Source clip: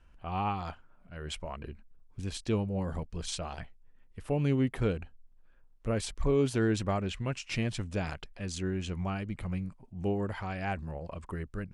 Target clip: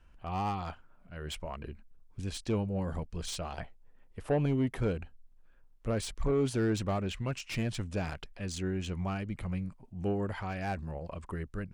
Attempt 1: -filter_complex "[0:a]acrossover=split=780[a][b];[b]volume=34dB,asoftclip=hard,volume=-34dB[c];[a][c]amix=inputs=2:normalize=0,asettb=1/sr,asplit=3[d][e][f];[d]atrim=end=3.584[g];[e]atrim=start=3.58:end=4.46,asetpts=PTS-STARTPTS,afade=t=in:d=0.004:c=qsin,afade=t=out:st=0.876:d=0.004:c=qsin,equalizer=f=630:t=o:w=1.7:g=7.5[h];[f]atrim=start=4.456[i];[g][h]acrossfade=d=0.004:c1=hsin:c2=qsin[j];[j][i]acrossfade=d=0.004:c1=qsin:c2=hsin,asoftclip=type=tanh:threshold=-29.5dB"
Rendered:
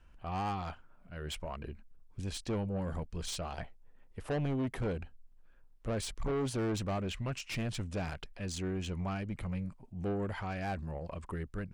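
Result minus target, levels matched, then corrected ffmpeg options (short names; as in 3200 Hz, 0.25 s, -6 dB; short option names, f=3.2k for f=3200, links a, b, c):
soft clip: distortion +9 dB
-filter_complex "[0:a]acrossover=split=780[a][b];[b]volume=34dB,asoftclip=hard,volume=-34dB[c];[a][c]amix=inputs=2:normalize=0,asettb=1/sr,asplit=3[d][e][f];[d]atrim=end=3.584[g];[e]atrim=start=3.58:end=4.46,asetpts=PTS-STARTPTS,afade=t=in:d=0.004:c=qsin,afade=t=out:st=0.876:d=0.004:c=qsin,equalizer=f=630:t=o:w=1.7:g=7.5[h];[f]atrim=start=4.456[i];[g][h]acrossfade=d=0.004:c1=hsin:c2=qsin[j];[j][i]acrossfade=d=0.004:c1=qsin:c2=hsin,asoftclip=type=tanh:threshold=-21dB"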